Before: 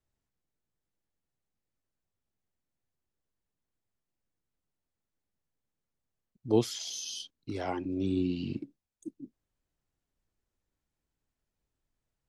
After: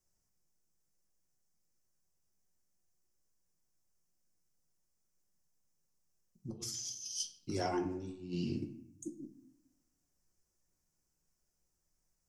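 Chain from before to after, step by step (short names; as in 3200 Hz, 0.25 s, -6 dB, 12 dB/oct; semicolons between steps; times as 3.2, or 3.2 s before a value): resonant high shelf 4600 Hz +7.5 dB, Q 3; negative-ratio compressor -34 dBFS, ratio -0.5; reverb RT60 0.80 s, pre-delay 5 ms, DRR 2.5 dB; gain -6 dB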